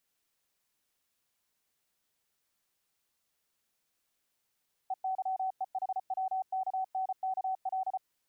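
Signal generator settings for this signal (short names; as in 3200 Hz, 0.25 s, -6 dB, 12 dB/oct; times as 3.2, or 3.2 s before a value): Morse "EYEHWKNKL" 34 wpm 757 Hz -29.5 dBFS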